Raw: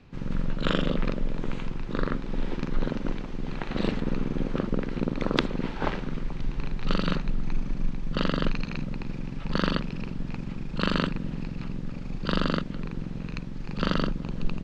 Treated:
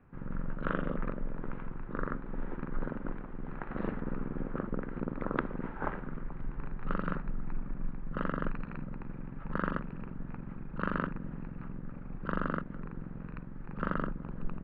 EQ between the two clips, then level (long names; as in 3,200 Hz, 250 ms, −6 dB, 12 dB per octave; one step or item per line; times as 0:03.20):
transistor ladder low-pass 1,800 Hz, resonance 40%
0.0 dB